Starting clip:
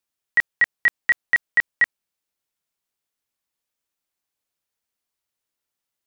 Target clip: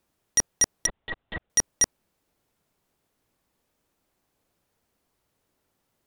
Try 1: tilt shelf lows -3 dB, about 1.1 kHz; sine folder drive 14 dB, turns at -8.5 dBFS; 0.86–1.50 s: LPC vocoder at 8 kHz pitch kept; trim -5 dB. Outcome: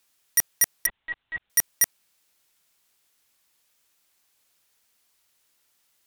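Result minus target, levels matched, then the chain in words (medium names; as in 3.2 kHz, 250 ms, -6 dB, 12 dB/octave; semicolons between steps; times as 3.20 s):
1 kHz band -5.5 dB
tilt shelf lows +8 dB, about 1.1 kHz; sine folder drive 14 dB, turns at -8.5 dBFS; 0.86–1.50 s: LPC vocoder at 8 kHz pitch kept; trim -5 dB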